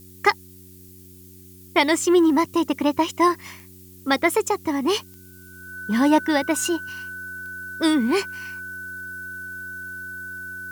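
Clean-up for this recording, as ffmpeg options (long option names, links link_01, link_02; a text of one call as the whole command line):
ffmpeg -i in.wav -af "adeclick=threshold=4,bandreject=frequency=92.3:width_type=h:width=4,bandreject=frequency=184.6:width_type=h:width=4,bandreject=frequency=276.9:width_type=h:width=4,bandreject=frequency=369.2:width_type=h:width=4,bandreject=frequency=1500:width=30,afftdn=noise_reduction=21:noise_floor=-46" out.wav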